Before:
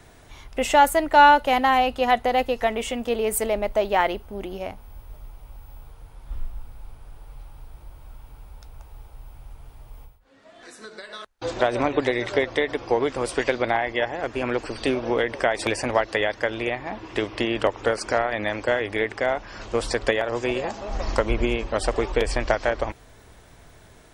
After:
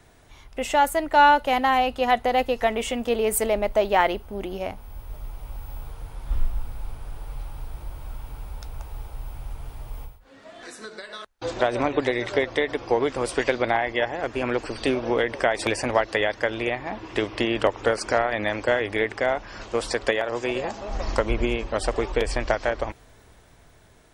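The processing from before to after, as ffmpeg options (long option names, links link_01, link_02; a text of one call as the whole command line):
ffmpeg -i in.wav -filter_complex "[0:a]asettb=1/sr,asplit=3[link_01][link_02][link_03];[link_01]atrim=end=19.634[link_04];[link_02]atrim=start=19.63:end=20.55,asetpts=PTS-STARTPTS,afade=type=in:duration=0.004:curve=qsin,afade=type=out:start_time=0.916:duration=0.004:curve=qsin,lowshelf=frequency=160:gain=-7[link_05];[link_03]atrim=start=20.546[link_06];[link_04][link_05]acrossfade=duration=0.004:curve1=hsin:curve2=qsin[link_07];[link_07][link_06]acrossfade=duration=0.004:curve1=qsin:curve2=hsin,dynaudnorm=framelen=100:gausssize=21:maxgain=12dB,volume=-4.5dB" out.wav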